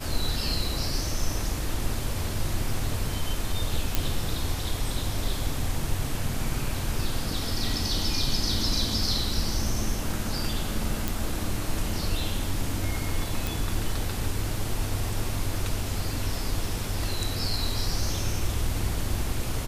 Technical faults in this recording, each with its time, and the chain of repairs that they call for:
0:03.95: click
0:11.08: click
0:13.47: click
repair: click removal

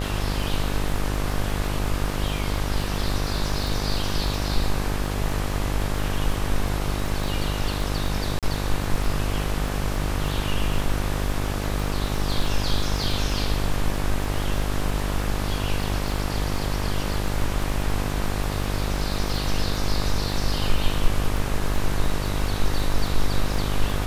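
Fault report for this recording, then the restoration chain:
mains buzz 50 Hz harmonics 25 −27 dBFS
surface crackle 31 per second −28 dBFS
0:08.39–0:08.43: drop-out 37 ms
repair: click removal
hum removal 50 Hz, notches 25
repair the gap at 0:08.39, 37 ms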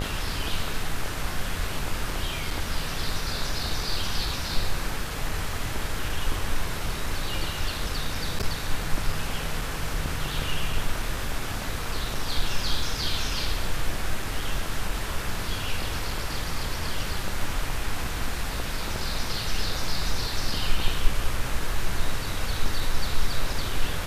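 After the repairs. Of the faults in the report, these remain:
none of them is left

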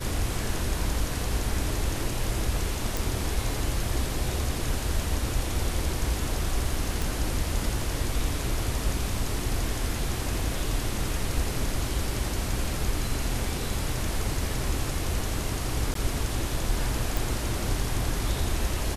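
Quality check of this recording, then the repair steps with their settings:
0:02.97: click
0:07.02: click
0:15.94–0:15.95: drop-out 13 ms
0:17.17: click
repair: click removal
repair the gap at 0:15.94, 13 ms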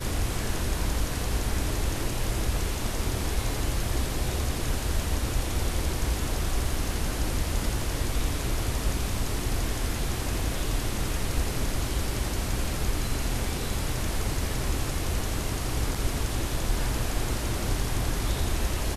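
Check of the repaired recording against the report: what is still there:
none of them is left

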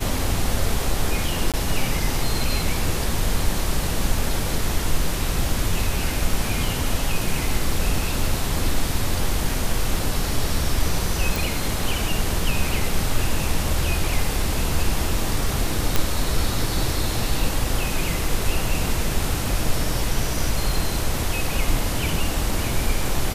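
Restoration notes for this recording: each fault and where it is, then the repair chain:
0:01.52–0:01.54: drop-out 17 ms
0:11.36: click
0:15.96: click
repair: click removal
repair the gap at 0:01.52, 17 ms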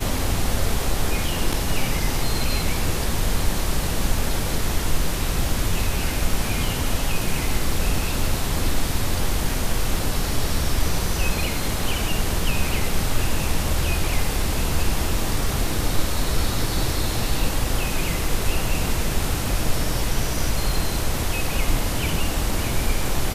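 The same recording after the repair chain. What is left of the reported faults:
none of them is left

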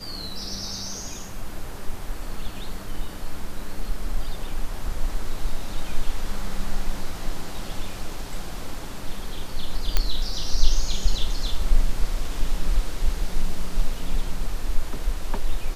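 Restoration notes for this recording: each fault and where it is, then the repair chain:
0:09.97: click −5 dBFS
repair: click removal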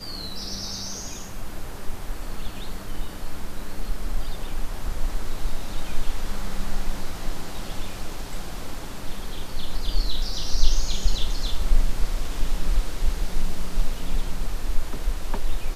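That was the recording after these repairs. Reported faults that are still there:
none of them is left

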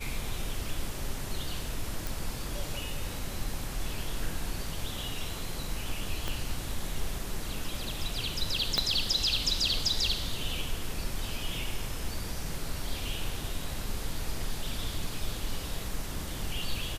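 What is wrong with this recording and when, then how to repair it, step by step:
0:02.07: click
0:06.28: click −17 dBFS
0:08.78: click −11 dBFS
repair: click removal

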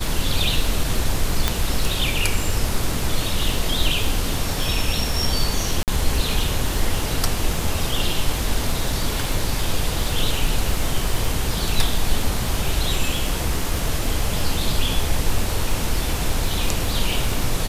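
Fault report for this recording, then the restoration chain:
surface crackle 37 per second −24 dBFS
0:01.48: click −2 dBFS
0:05.83–0:05.88: drop-out 48 ms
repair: click removal
repair the gap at 0:05.83, 48 ms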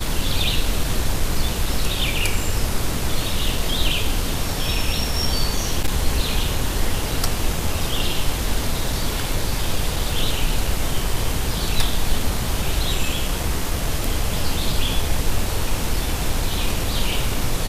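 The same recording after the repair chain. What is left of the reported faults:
0:01.48: click

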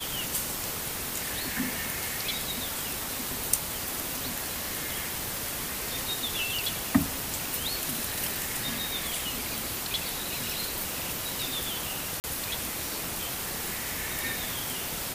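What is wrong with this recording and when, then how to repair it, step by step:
0:12.20–0:12.24: drop-out 39 ms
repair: repair the gap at 0:12.20, 39 ms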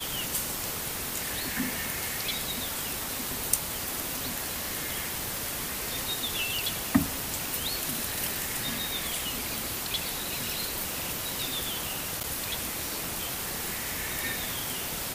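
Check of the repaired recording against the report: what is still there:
none of them is left

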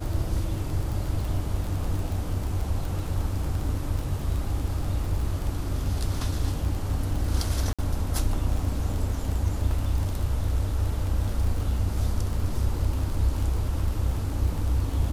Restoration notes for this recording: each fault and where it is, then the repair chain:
surface crackle 22 per second −29 dBFS
0:07.73–0:07.79: drop-out 56 ms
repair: click removal
repair the gap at 0:07.73, 56 ms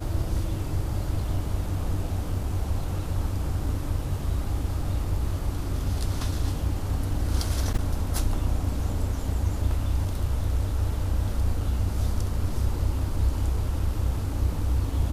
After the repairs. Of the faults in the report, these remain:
none of them is left

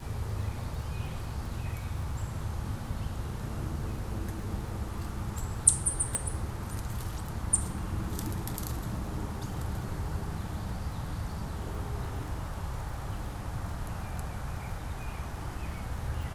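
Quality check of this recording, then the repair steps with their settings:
surface crackle 28 per second −39 dBFS
0:06.15: click −15 dBFS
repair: click removal

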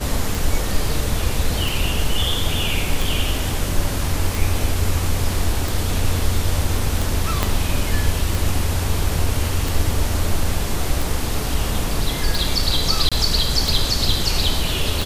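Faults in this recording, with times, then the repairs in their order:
scratch tick 45 rpm
0:07.43: click −3 dBFS
0:13.09–0:13.12: drop-out 26 ms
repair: click removal
repair the gap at 0:13.09, 26 ms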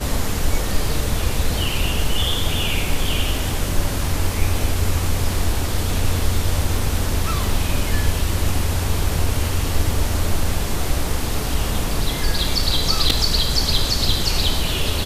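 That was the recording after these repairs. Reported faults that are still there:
0:07.43: click

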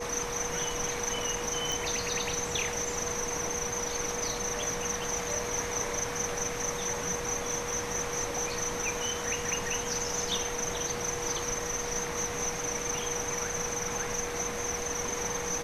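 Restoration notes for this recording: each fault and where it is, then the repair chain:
whistle 480 Hz −37 dBFS
0:01.72: click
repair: click removal
notch filter 480 Hz, Q 30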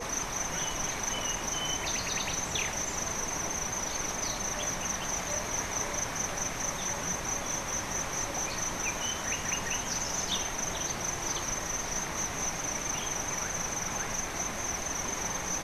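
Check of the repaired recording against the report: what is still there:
none of them is left

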